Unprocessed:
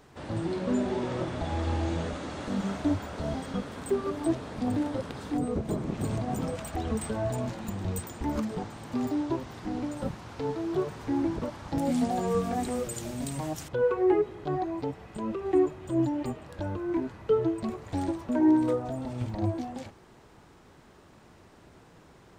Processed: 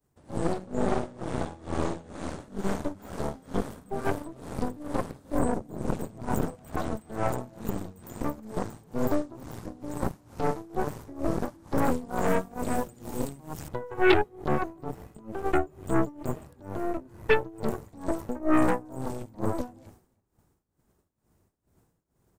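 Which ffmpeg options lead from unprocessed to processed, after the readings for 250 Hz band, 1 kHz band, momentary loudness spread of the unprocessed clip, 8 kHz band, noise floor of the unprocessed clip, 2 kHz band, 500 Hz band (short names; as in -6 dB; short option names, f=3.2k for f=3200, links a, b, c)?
-2.5 dB, +3.0 dB, 9 LU, -2.0 dB, -55 dBFS, +7.5 dB, -0.5 dB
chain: -filter_complex "[0:a]acrossover=split=140[a][b];[a]acompressor=threshold=-48dB:ratio=6[c];[c][b]amix=inputs=2:normalize=0,agate=range=-33dB:threshold=-44dB:ratio=3:detection=peak,acrossover=split=4500[d][e];[e]acompressor=threshold=-58dB:ratio=4:attack=1:release=60[f];[d][f]amix=inputs=2:normalize=0,lowshelf=f=180:g=7.5,tremolo=f=2.2:d=0.89,equalizer=f=3.5k:t=o:w=2.6:g=-14,asplit=2[g][h];[h]adelay=303.2,volume=-24dB,highshelf=f=4k:g=-6.82[i];[g][i]amix=inputs=2:normalize=0,aeval=exprs='0.2*(cos(1*acos(clip(val(0)/0.2,-1,1)))-cos(1*PI/2))+0.02*(cos(3*acos(clip(val(0)/0.2,-1,1)))-cos(3*PI/2))+0.0398*(cos(8*acos(clip(val(0)/0.2,-1,1)))-cos(8*PI/2))':c=same,crystalizer=i=4.5:c=0,volume=3dB"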